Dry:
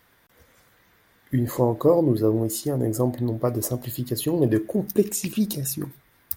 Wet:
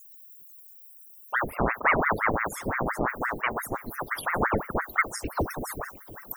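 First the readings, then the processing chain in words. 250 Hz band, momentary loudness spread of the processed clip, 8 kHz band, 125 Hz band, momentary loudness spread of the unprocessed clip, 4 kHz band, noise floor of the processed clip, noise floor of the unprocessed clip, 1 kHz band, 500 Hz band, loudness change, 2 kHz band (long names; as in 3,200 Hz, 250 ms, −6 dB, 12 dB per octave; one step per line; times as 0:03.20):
−11.0 dB, 23 LU, −10.0 dB, −11.5 dB, 9 LU, −7.0 dB, −50 dBFS, −61 dBFS, +8.0 dB, −8.5 dB, −4.0 dB, +18.0 dB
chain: background noise blue −35 dBFS
spectral peaks only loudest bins 32
on a send: feedback echo with a long and a short gap by turns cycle 1,182 ms, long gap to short 1.5 to 1, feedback 43%, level −20 dB
on the sum: ring modulator whose carrier an LFO sweeps 920 Hz, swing 90%, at 5.8 Hz
level −2 dB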